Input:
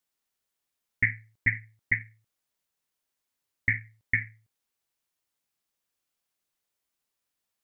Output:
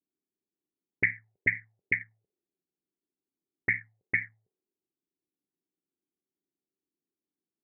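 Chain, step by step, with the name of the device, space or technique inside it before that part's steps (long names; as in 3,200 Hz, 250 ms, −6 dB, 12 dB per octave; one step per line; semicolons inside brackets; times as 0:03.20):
envelope filter bass rig (envelope-controlled low-pass 300–2,500 Hz up, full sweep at −24 dBFS; loudspeaker in its box 77–2,100 Hz, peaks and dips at 110 Hz −4 dB, 180 Hz +6 dB, 390 Hz +10 dB, 780 Hz +9 dB)
level −5.5 dB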